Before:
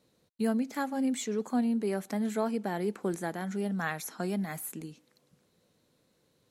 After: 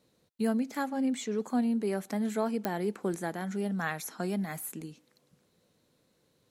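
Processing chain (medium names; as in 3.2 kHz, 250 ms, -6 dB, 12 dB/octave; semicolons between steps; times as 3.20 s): 0.89–1.35 s: treble shelf 9.1 kHz -10.5 dB; clicks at 2.65 s, -15 dBFS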